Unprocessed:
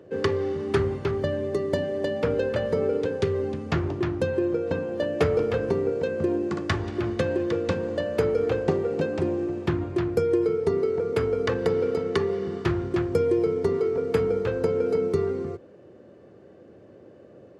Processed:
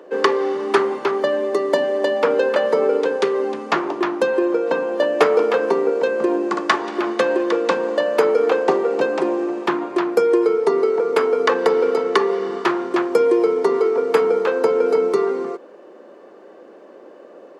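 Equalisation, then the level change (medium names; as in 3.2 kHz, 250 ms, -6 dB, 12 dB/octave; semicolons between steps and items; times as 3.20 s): Bessel high-pass 380 Hz, order 8; peaking EQ 1 kHz +8 dB 0.81 oct; +8.5 dB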